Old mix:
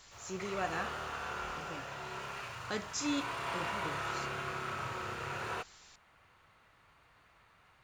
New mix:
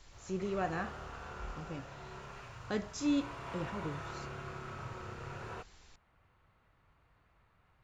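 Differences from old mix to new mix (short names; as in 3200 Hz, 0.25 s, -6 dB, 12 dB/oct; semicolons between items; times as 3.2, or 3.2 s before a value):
background -7.0 dB; master: add tilt -2.5 dB/oct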